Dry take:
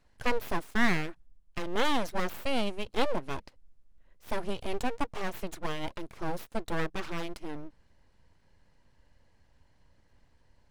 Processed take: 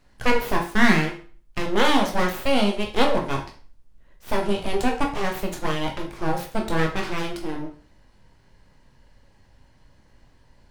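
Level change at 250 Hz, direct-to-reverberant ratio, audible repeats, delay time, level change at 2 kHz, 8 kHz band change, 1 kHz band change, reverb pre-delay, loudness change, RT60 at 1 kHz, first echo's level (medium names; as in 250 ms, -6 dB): +10.5 dB, 1.5 dB, no echo, no echo, +9.0 dB, +9.0 dB, +9.5 dB, 13 ms, +9.5 dB, 0.40 s, no echo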